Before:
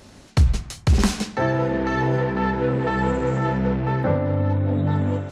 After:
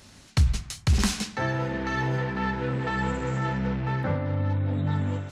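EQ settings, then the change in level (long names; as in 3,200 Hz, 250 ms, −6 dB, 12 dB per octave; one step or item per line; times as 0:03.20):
low-shelf EQ 71 Hz −7 dB
parametric band 460 Hz −9.5 dB 2.5 octaves
0.0 dB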